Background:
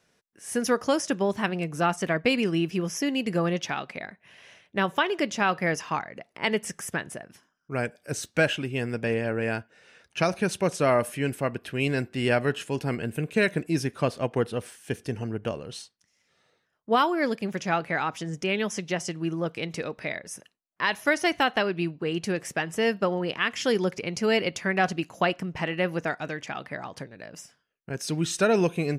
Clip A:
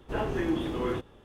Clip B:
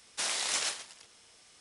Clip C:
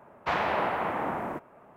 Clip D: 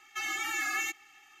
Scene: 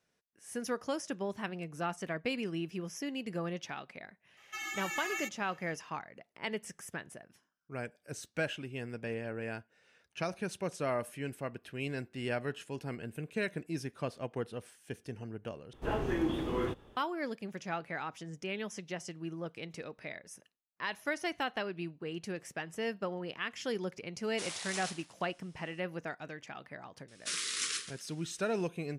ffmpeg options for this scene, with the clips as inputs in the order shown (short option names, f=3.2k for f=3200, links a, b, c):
-filter_complex "[2:a]asplit=2[a][b];[0:a]volume=-11.5dB[c];[b]asuperstop=centerf=730:order=8:qfactor=1.1[d];[c]asplit=2[e][f];[e]atrim=end=15.734[g];[1:a]atrim=end=1.24,asetpts=PTS-STARTPTS,volume=-3dB[h];[f]atrim=start=16.966[i];[4:a]atrim=end=1.4,asetpts=PTS-STARTPTS,volume=-6dB,afade=t=in:d=0.004:c=hsin,afade=t=out:st=1.396:d=0.004:c=hsin,adelay=192717S[j];[a]atrim=end=1.6,asetpts=PTS-STARTPTS,volume=-9.5dB,afade=t=in:d=0.004:c=hsin,afade=t=out:st=1.596:d=0.004:c=hsin,adelay=24200[k];[d]atrim=end=1.6,asetpts=PTS-STARTPTS,volume=-3.5dB,afade=t=in:d=0.004:c=hsin,afade=t=out:st=1.596:d=0.004:c=hsin,adelay=27080[l];[g][h]acrossfade=d=0.004:c1=hsin:c2=hsin[m];[m][i]acrossfade=d=0.004:c1=hsin:c2=hsin[n];[n][j][k][l]amix=inputs=4:normalize=0"